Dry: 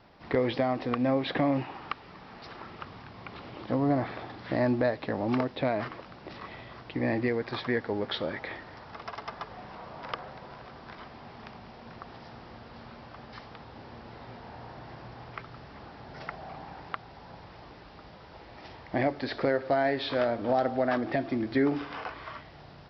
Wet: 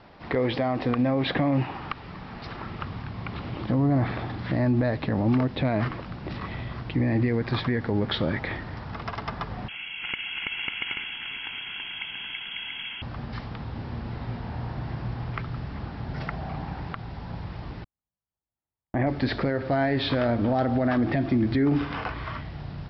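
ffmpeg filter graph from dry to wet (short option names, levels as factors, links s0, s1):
-filter_complex "[0:a]asettb=1/sr,asplit=3[s0][s1][s2];[s0]atrim=end=9.684[s3];[s1]atrim=start=9.68:end=13.02,asetpts=PTS-STARTPTS,afade=t=in:d=0.004:c=qsin,afade=t=out:st=3.336:d=0.004:c=qsin,aecho=1:1:1.6:0.49,atrim=end_sample=147294,aecho=1:1:330|544.5|683.9|774.6|833.5:0.794|0.631|0.501|0.398|0.316,atrim=end_sample=147294,lowpass=f=2900:t=q:w=0.5098,lowpass=f=2900:t=q:w=0.6013,lowpass=f=2900:t=q:w=0.9,lowpass=f=2900:t=q:w=2.563,afreqshift=-3400[s4];[s2]atrim=start=13.016[s5];[s3][s4]acrossfade=d=0.004:c1=hsin:c2=qsin[s6];[s6][s5]acrossfade=d=0.004:c1=qsin:c2=hsin,asettb=1/sr,asplit=3[s7][s8][s9];[s7]atrim=end=17.844[s10];[s8]atrim=start=17.84:end=19.07,asetpts=PTS-STARTPTS,afade=t=in:d=0.004:c=qsin,afade=t=out:st=1.226:d=0.004:c=qsin,lowpass=1200,agate=range=0.00178:threshold=0.01:ratio=16:release=100:detection=peak,tiltshelf=f=800:g=-6[s11];[s9]atrim=start=19.066[s12];[s10][s11]acrossfade=d=0.004:c1=hsin:c2=qsin[s13];[s13][s12]acrossfade=d=0.004:c1=qsin:c2=hsin,asubboost=boost=3.5:cutoff=240,lowpass=4700,alimiter=limit=0.0794:level=0:latency=1:release=57,volume=2.11"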